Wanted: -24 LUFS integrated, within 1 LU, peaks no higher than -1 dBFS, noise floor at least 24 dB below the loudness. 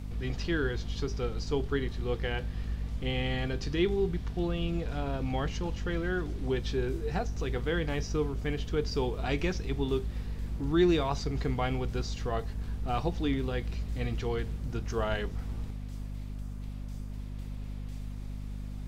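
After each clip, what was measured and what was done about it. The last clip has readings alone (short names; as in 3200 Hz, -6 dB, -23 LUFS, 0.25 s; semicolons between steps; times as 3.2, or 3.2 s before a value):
hum 50 Hz; harmonics up to 250 Hz; hum level -36 dBFS; noise floor -39 dBFS; noise floor target -57 dBFS; loudness -33.0 LUFS; peak -14.0 dBFS; loudness target -24.0 LUFS
-> notches 50/100/150/200/250 Hz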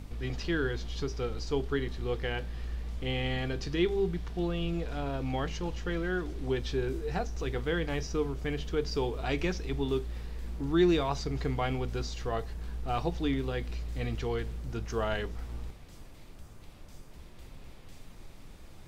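hum none; noise floor -50 dBFS; noise floor target -57 dBFS
-> noise print and reduce 7 dB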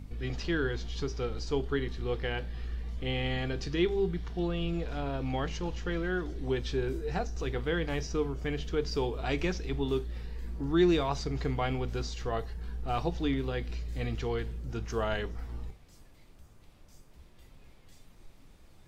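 noise floor -56 dBFS; noise floor target -57 dBFS
-> noise print and reduce 6 dB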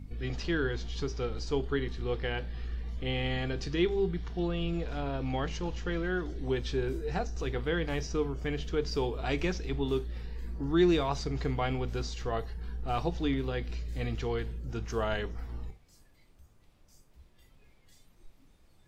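noise floor -62 dBFS; loudness -33.0 LUFS; peak -14.5 dBFS; loudness target -24.0 LUFS
-> gain +9 dB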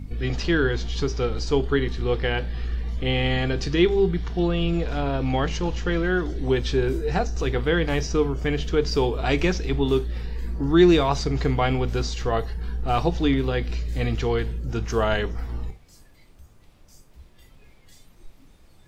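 loudness -24.0 LUFS; peak -5.5 dBFS; noise floor -53 dBFS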